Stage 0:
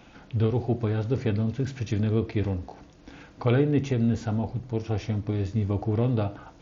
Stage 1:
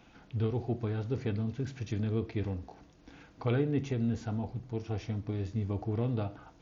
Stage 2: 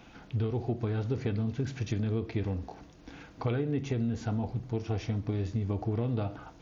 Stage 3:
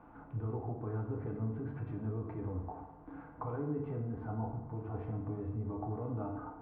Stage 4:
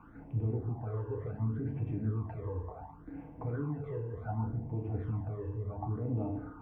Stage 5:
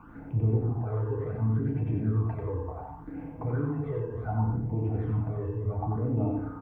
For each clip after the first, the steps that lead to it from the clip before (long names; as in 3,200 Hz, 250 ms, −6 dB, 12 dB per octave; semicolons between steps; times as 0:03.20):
notch filter 560 Hz, Q 12; level −7 dB
downward compressor, threshold −32 dBFS, peak gain reduction 8 dB; level +5.5 dB
brickwall limiter −27 dBFS, peak gain reduction 8.5 dB; transistor ladder low-pass 1,300 Hz, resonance 50%; feedback delay network reverb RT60 0.97 s, low-frequency decay 0.95×, high-frequency decay 0.8×, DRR 1.5 dB; level +3.5 dB
all-pass phaser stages 12, 0.68 Hz, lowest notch 220–1,400 Hz; level +4.5 dB
single-tap delay 91 ms −4 dB; level +5 dB